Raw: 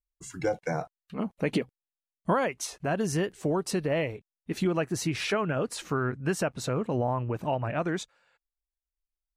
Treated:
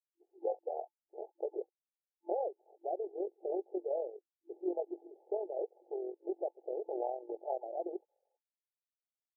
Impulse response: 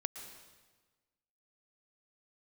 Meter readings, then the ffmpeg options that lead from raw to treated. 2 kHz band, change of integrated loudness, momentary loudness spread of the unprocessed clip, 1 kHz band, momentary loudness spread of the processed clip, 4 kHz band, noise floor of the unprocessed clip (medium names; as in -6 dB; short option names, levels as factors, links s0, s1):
under -40 dB, -10.0 dB, 8 LU, -10.0 dB, 11 LU, under -40 dB, under -85 dBFS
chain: -af "afftfilt=real='re*between(b*sr/4096,340,870)':imag='im*between(b*sr/4096,340,870)':win_size=4096:overlap=0.75,tremolo=f=44:d=0.519,volume=0.631"